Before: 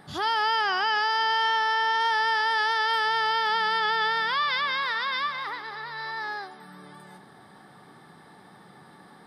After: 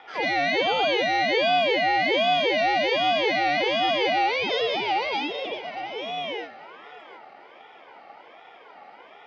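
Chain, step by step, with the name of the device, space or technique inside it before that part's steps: voice changer toy (ring modulator with a swept carrier 1.3 kHz, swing 25%, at 1.3 Hz; cabinet simulation 450–3600 Hz, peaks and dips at 460 Hz +4 dB, 790 Hz +6 dB, 1.2 kHz -5 dB, 1.7 kHz -8 dB, 2.7 kHz -9 dB); trim +8.5 dB

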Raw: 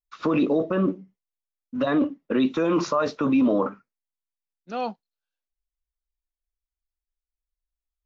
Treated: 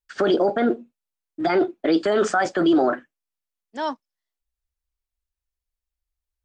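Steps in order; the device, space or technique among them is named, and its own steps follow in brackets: nightcore (tape speed +25%); trim +2.5 dB

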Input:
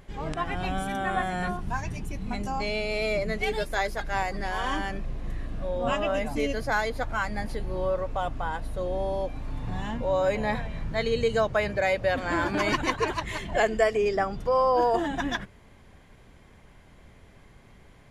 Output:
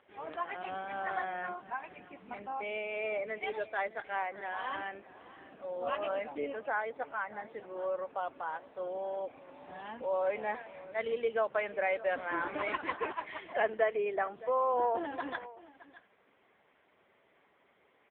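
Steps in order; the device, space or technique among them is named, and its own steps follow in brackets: 4.25–5.05 s: hum notches 60/120/180/240/300/360/420/480 Hz; high-pass 170 Hz 12 dB/octave; 6.31–7.73 s: dynamic bell 3 kHz, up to -5 dB, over -42 dBFS, Q 0.86; satellite phone (band-pass 370–3400 Hz; delay 618 ms -18 dB; trim -5 dB; AMR-NB 6.7 kbps 8 kHz)

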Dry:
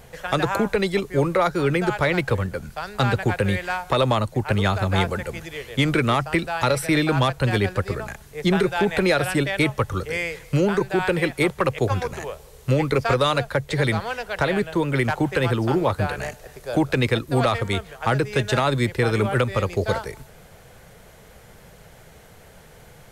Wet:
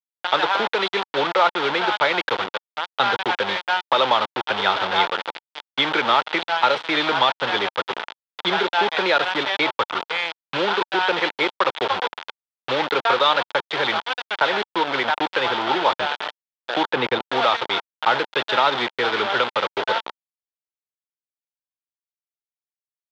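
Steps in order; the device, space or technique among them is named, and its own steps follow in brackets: hand-held game console (bit crusher 4-bit; cabinet simulation 430–4100 Hz, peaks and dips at 900 Hz +8 dB, 1.4 kHz +5 dB, 3.4 kHz +8 dB); 16.89–17.29 s: tilt EQ -2 dB/octave

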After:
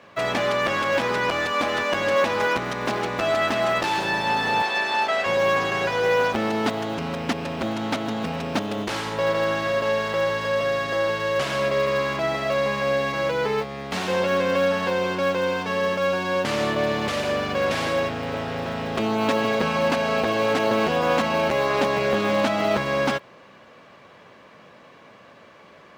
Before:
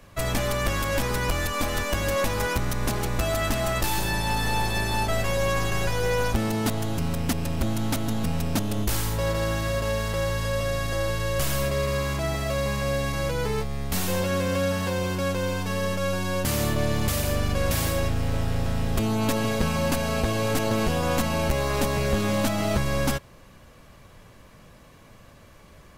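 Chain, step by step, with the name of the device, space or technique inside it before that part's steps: early digital voice recorder (band-pass 270–3500 Hz; block-companded coder 7-bit); 4.62–5.26 s: frequency weighting A; peaking EQ 300 Hz -2.5 dB 0.41 oct; trim +6 dB

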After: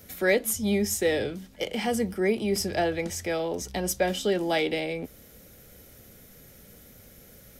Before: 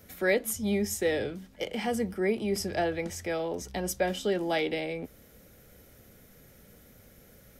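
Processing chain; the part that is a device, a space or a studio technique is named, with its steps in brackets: exciter from parts (in parallel at -5.5 dB: high-pass 2.2 kHz 12 dB/octave + saturation -36 dBFS, distortion -8 dB); on the sum: trim +3 dB

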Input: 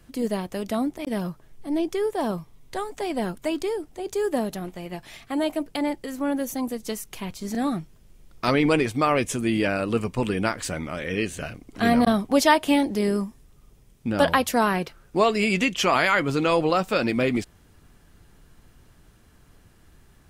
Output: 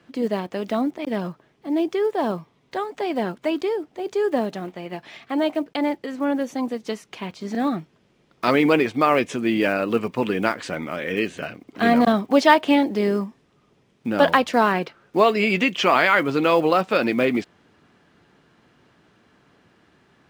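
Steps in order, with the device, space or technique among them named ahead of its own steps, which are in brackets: early digital voice recorder (band-pass 200–3800 Hz; block-companded coder 7-bit); trim +3.5 dB

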